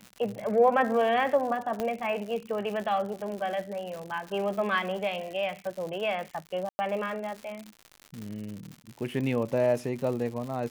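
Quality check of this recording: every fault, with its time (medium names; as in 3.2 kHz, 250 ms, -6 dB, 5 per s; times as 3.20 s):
crackle 150 per s -35 dBFS
1.80 s: pop -17 dBFS
6.69–6.79 s: dropout 100 ms
8.22 s: pop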